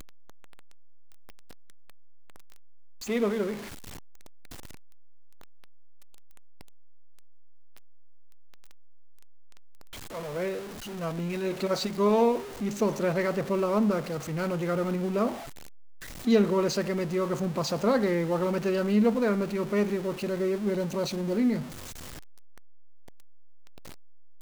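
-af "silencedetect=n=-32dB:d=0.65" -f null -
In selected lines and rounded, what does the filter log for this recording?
silence_start: 0.00
silence_end: 3.03 | silence_duration: 3.03
silence_start: 3.55
silence_end: 10.15 | silence_duration: 6.60
silence_start: 15.34
silence_end: 16.27 | silence_duration: 0.93
silence_start: 21.62
silence_end: 24.42 | silence_duration: 2.79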